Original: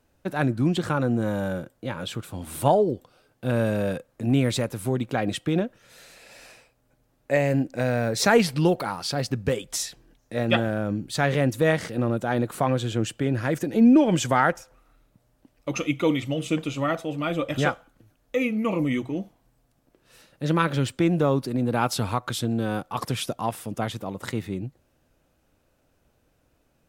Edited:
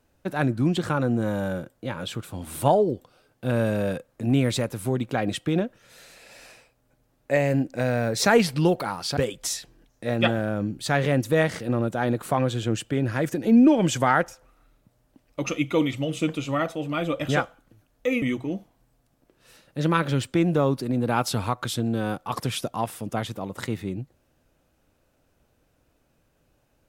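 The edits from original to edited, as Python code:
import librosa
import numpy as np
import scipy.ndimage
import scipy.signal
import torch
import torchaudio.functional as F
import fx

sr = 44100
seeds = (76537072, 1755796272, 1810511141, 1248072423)

y = fx.edit(x, sr, fx.cut(start_s=9.17, length_s=0.29),
    fx.cut(start_s=18.51, length_s=0.36), tone=tone)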